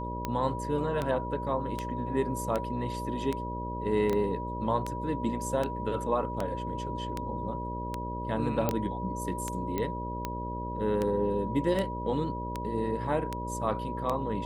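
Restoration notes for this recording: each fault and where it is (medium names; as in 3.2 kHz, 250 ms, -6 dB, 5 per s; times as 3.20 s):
buzz 60 Hz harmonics 10 -37 dBFS
tick 78 rpm -17 dBFS
whine 970 Hz -36 dBFS
4.13 s: pop -19 dBFS
8.69 s: pop -13 dBFS
9.78 s: pop -18 dBFS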